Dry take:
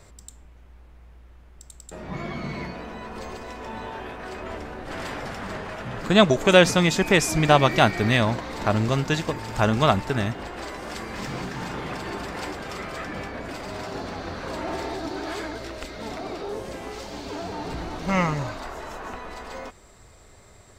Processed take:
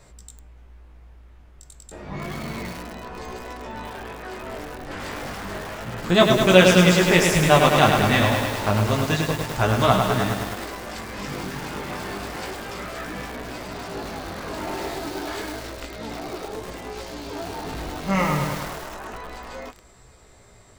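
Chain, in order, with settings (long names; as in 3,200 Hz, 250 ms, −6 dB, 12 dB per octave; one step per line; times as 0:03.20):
chorus effect 0.3 Hz, delay 16 ms, depth 4.6 ms
feedback echo at a low word length 103 ms, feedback 80%, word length 6 bits, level −4 dB
level +3 dB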